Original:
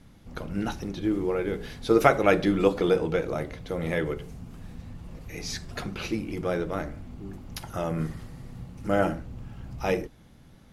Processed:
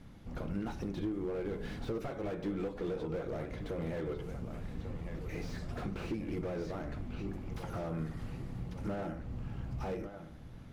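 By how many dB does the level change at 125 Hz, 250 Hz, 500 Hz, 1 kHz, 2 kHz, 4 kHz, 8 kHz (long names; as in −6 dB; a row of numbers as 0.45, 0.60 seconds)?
−5.5, −9.5, −12.5, −15.0, −15.5, −14.5, −16.5 decibels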